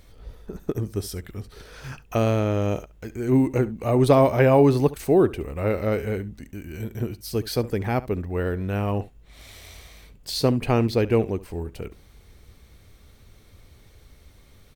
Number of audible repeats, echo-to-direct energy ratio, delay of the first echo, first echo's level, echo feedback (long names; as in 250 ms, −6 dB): 1, −18.5 dB, 70 ms, −18.5 dB, repeats not evenly spaced